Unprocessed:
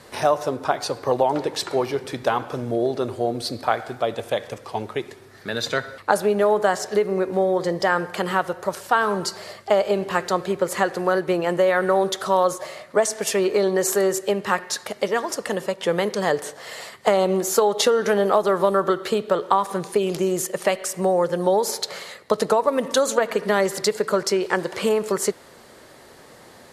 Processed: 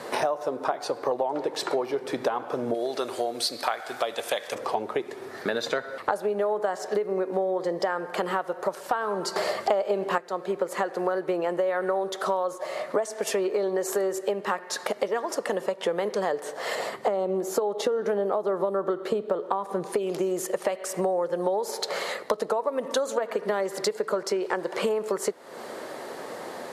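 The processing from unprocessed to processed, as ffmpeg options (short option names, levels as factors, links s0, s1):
-filter_complex "[0:a]asettb=1/sr,asplit=3[s0][s1][s2];[s0]atrim=end=2.744[s3];[s1]atrim=start=2.74:end=4.55,asetpts=PTS-STARTPTS,afade=t=in:d=0.004:c=qsin,afade=t=out:st=1.806:d=0.004:c=qsin,tiltshelf=f=1200:g=-9.5[s4];[s2]atrim=start=4.546[s5];[s3][s4]acrossfade=d=0.004:c1=hsin:c2=qsin[s6];[s6][s5]acrossfade=d=0.004:c1=qsin:c2=hsin,asettb=1/sr,asplit=3[s7][s8][s9];[s7]atrim=end=16.754[s10];[s8]atrim=start=16.75:end=19.86,asetpts=PTS-STARTPTS,afade=t=in:d=0.004:c=qsin,afade=t=out:st=3.106:d=0.004:c=qsin,tiltshelf=f=640:g=4.5[s11];[s9]atrim=start=19.856[s12];[s10][s11]acrossfade=d=0.004:c1=hsin:c2=qsin[s13];[s13][s12]acrossfade=d=0.004:c1=qsin:c2=hsin,asplit=3[s14][s15][s16];[s14]atrim=end=9.362[s17];[s15]atrim=start=9.358:end=10.182,asetpts=PTS-STARTPTS,volume=3.55[s18];[s16]atrim=start=10.178[s19];[s17][s18]acrossfade=d=0.004:c1=hsin:c2=hsin[s20];[s20][s19]acrossfade=d=0.004:c1=hsin:c2=hsin,highpass=180,equalizer=f=620:w=0.42:g=9,acompressor=threshold=0.0398:ratio=6,volume=1.41"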